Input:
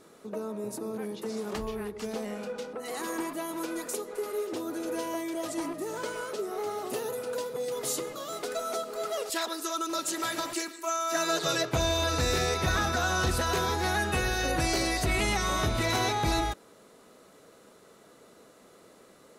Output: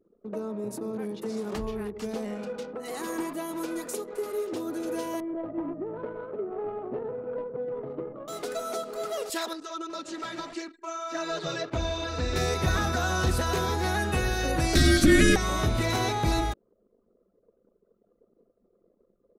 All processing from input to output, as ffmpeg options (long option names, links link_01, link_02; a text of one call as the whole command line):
ffmpeg -i in.wav -filter_complex "[0:a]asettb=1/sr,asplit=3[link_01][link_02][link_03];[link_01]atrim=end=5.204[link_04];[link_02]atrim=start=5.2:end=8.28,asetpts=PTS-STARTPTS,afade=type=in:duration=0.004:curve=qsin,afade=type=out:start_time=3.076:duration=0.004:curve=qsin,lowpass=2100,adynamicsmooth=sensitivity=1:basefreq=890[link_05];[link_03]atrim=start=8.276[link_06];[link_04][link_05]acrossfade=duration=0.004:curve1=hsin:curve2=qsin[link_07];[link_07][link_06]acrossfade=duration=0.004:curve1=qsin:curve2=hsin,asettb=1/sr,asplit=3[link_08][link_09][link_10];[link_08]atrim=end=9.534[link_11];[link_09]atrim=start=9.53:end=12.36,asetpts=PTS-STARTPTS,afade=type=in:duration=0.004:curve=qsin,afade=type=out:start_time=2.826:duration=0.004:curve=qsin,lowpass=8700,acrossover=split=6100[link_12][link_13];[link_13]acompressor=threshold=-55dB:ratio=4:attack=1:release=60[link_14];[link_12][link_14]amix=inputs=2:normalize=0,flanger=delay=3.1:depth=2.7:regen=-29:speed=1.8:shape=triangular[link_15];[link_10]atrim=start=12.356[link_16];[link_11][link_15]acrossfade=duration=0.004:curve1=hsin:curve2=qsin[link_17];[link_17][link_16]acrossfade=duration=0.004:curve1=qsin:curve2=hsin,asettb=1/sr,asplit=3[link_18][link_19][link_20];[link_18]atrim=end=14.754[link_21];[link_19]atrim=start=14.75:end=15.36,asetpts=PTS-STARTPTS,afade=type=in:duration=0.004:curve=qsin,afade=type=out:start_time=0.606:duration=0.004:curve=qsin,acontrast=88,afreqshift=-400,asuperstop=centerf=920:order=12:qfactor=2.8[link_22];[link_20]atrim=start=15.356[link_23];[link_21][link_22]acrossfade=duration=0.004:curve1=hsin:curve2=qsin[link_24];[link_24][link_23]acrossfade=duration=0.004:curve1=qsin:curve2=hsin,anlmdn=0.0251,lowshelf=frequency=460:gain=5.5,volume=-1.5dB" out.wav